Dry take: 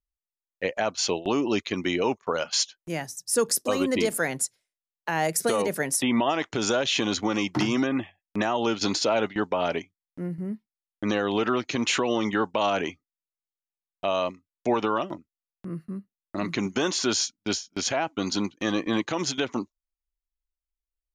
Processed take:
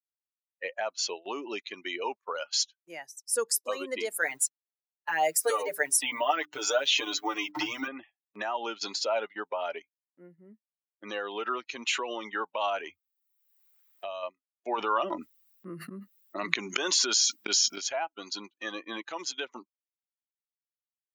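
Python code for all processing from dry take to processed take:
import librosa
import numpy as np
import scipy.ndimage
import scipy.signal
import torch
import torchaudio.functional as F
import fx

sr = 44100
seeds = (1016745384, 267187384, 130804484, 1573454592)

y = fx.chain(x, sr, fx.delta_hold(step_db=-45.5),
    fx.hum_notches(base_hz=50, count=8),
    fx.comb(ms=6.7, depth=0.92), at=(4.21, 7.88))
y = fx.chain(y, sr, fx.peak_eq(hz=81.0, db=13.0, octaves=1.4),
    fx.quant_dither(seeds[0], bits=12, dither='triangular'),
    fx.band_squash(depth_pct=70), at=(12.86, 14.23))
y = fx.chain(y, sr, fx.auto_swell(attack_ms=276.0),
    fx.env_flatten(amount_pct=100), at=(14.78, 17.78))
y = fx.bin_expand(y, sr, power=1.5)
y = scipy.signal.sosfilt(scipy.signal.butter(2, 570.0, 'highpass', fs=sr, output='sos'), y)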